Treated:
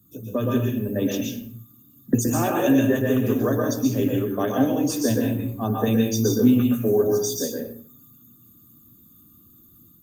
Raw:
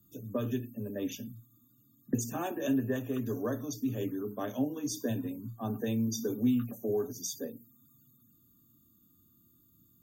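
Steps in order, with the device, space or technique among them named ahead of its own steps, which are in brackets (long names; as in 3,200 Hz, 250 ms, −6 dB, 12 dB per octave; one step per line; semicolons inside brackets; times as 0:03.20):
0:04.85–0:05.92: dynamic equaliser 150 Hz, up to −3 dB, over −47 dBFS, Q 2.4
speakerphone in a meeting room (convolution reverb RT60 0.45 s, pre-delay 116 ms, DRR −0.5 dB; automatic gain control gain up to 3.5 dB; level +7 dB; Opus 32 kbit/s 48,000 Hz)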